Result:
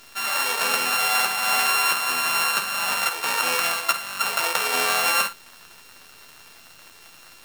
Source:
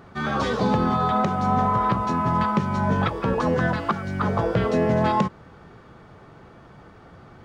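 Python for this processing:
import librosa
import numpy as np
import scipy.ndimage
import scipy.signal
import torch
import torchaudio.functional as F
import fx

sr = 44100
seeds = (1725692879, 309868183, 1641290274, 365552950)

y = np.r_[np.sort(x[:len(x) // 32 * 32].reshape(-1, 32), axis=1).ravel(), x[len(x) // 32 * 32:]]
y = scipy.signal.sosfilt(scipy.signal.butter(2, 960.0, 'highpass', fs=sr, output='sos'), y)
y = fx.quant_dither(y, sr, seeds[0], bits=8, dither='none')
y = fx.room_early_taps(y, sr, ms=(12, 52), db=(-6.5, -11.5))
y = y * 10.0 ** (3.5 / 20.0)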